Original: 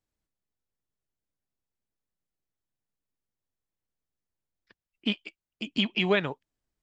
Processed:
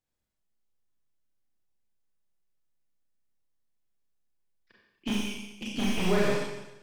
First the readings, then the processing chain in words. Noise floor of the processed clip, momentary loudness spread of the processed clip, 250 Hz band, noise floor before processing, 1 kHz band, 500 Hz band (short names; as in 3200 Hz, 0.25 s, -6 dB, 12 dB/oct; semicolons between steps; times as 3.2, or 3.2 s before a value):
-81 dBFS, 13 LU, +1.0 dB, under -85 dBFS, +1.5 dB, +1.0 dB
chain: tracing distortion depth 0.15 ms; Schroeder reverb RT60 1 s, combs from 30 ms, DRR -4 dB; slew limiter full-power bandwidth 99 Hz; gain -4 dB